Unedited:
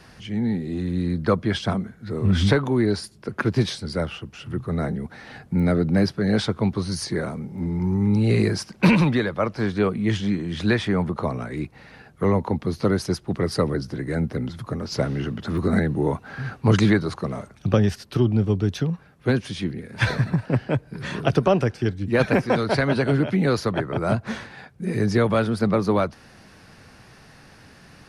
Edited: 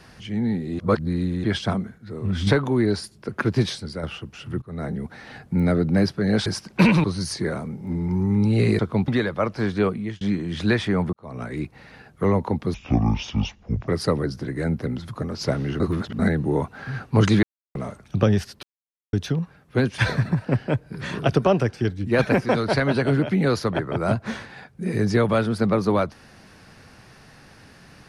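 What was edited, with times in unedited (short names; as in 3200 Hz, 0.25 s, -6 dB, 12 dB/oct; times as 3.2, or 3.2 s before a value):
0.79–1.44 reverse
1.98–2.47 gain -5.5 dB
3.76–4.03 fade out, to -8.5 dB
4.62–4.99 fade in, from -20 dB
6.46–6.75 swap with 8.5–9.08
9.89–10.21 fade out linear
11.13–11.43 fade in quadratic
12.74–13.39 speed 57%
15.31–15.7 reverse
16.94–17.26 mute
18.14–18.64 mute
19.49–19.99 cut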